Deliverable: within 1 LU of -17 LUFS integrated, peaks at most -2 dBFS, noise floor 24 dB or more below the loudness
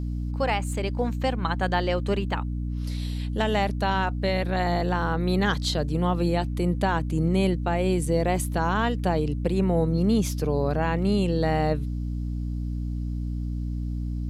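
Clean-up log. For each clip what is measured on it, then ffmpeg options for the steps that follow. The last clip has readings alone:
hum 60 Hz; harmonics up to 300 Hz; hum level -26 dBFS; loudness -26.0 LUFS; peak -11.0 dBFS; loudness target -17.0 LUFS
-> -af "bandreject=f=60:t=h:w=6,bandreject=f=120:t=h:w=6,bandreject=f=180:t=h:w=6,bandreject=f=240:t=h:w=6,bandreject=f=300:t=h:w=6"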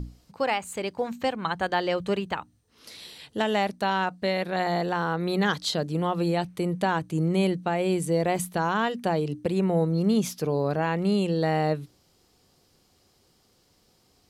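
hum none; loudness -26.5 LUFS; peak -12.5 dBFS; loudness target -17.0 LUFS
-> -af "volume=9.5dB"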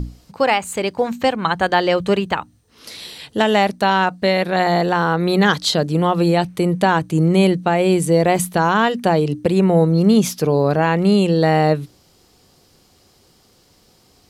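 loudness -17.0 LUFS; peak -3.0 dBFS; noise floor -55 dBFS

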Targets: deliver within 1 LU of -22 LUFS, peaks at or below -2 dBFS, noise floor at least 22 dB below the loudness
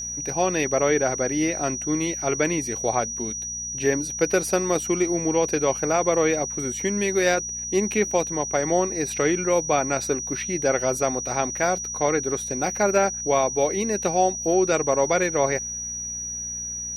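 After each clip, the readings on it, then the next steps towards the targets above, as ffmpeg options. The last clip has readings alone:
hum 60 Hz; harmonics up to 240 Hz; hum level -42 dBFS; steady tone 5800 Hz; tone level -29 dBFS; loudness -23.0 LUFS; peak -8.5 dBFS; loudness target -22.0 LUFS
-> -af "bandreject=f=60:t=h:w=4,bandreject=f=120:t=h:w=4,bandreject=f=180:t=h:w=4,bandreject=f=240:t=h:w=4"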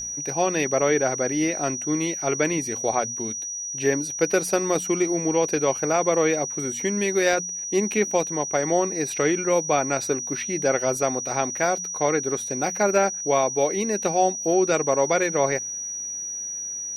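hum none; steady tone 5800 Hz; tone level -29 dBFS
-> -af "bandreject=f=5.8k:w=30"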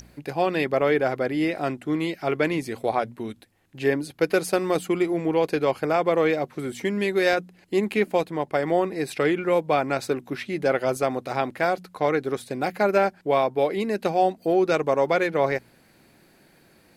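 steady tone none; loudness -24.5 LUFS; peak -9.0 dBFS; loudness target -22.0 LUFS
-> -af "volume=2.5dB"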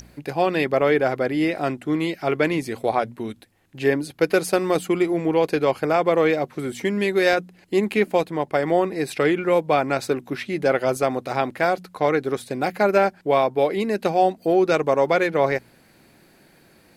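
loudness -22.0 LUFS; peak -6.5 dBFS; noise floor -55 dBFS

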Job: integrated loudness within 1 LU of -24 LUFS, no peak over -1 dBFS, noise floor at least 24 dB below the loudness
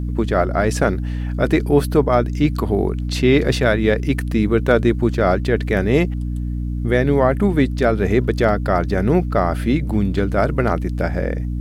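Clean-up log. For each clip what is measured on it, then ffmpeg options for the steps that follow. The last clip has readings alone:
hum 60 Hz; harmonics up to 300 Hz; hum level -20 dBFS; loudness -18.5 LUFS; peak -2.0 dBFS; loudness target -24.0 LUFS
-> -af "bandreject=f=60:t=h:w=4,bandreject=f=120:t=h:w=4,bandreject=f=180:t=h:w=4,bandreject=f=240:t=h:w=4,bandreject=f=300:t=h:w=4"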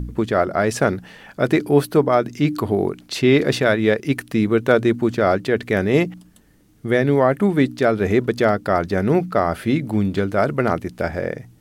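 hum none; loudness -19.5 LUFS; peak -3.0 dBFS; loudness target -24.0 LUFS
-> -af "volume=-4.5dB"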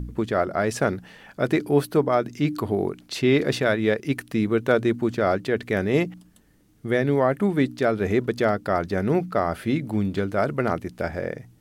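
loudness -24.0 LUFS; peak -7.5 dBFS; noise floor -57 dBFS

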